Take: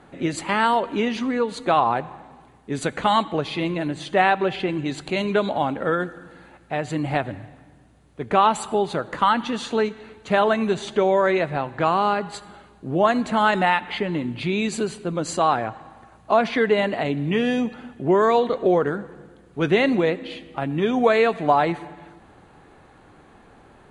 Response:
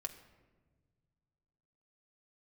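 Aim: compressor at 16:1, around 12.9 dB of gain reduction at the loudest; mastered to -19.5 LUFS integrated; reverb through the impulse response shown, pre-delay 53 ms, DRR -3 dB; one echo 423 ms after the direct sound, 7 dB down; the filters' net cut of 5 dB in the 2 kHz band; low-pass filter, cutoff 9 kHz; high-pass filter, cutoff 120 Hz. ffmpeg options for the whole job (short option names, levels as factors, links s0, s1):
-filter_complex "[0:a]highpass=120,lowpass=9000,equalizer=f=2000:t=o:g=-6.5,acompressor=threshold=0.0501:ratio=16,aecho=1:1:423:0.447,asplit=2[s0][s1];[1:a]atrim=start_sample=2205,adelay=53[s2];[s1][s2]afir=irnorm=-1:irlink=0,volume=1.78[s3];[s0][s3]amix=inputs=2:normalize=0,volume=2.24"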